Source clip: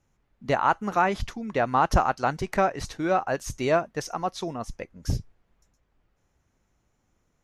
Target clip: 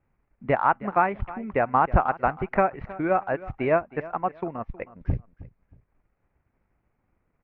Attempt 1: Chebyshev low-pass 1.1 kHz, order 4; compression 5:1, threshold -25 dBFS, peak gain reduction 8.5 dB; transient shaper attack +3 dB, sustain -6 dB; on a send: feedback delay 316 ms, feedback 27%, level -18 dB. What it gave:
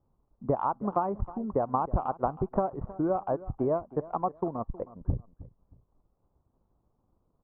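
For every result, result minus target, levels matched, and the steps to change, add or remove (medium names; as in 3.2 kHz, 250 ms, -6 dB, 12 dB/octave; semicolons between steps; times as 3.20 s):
2 kHz band -17.0 dB; compression: peak gain reduction +8.5 dB
change: Chebyshev low-pass 2.4 kHz, order 4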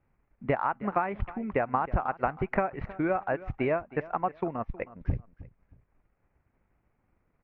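compression: peak gain reduction +9 dB
remove: compression 5:1, threshold -25 dBFS, peak gain reduction 9 dB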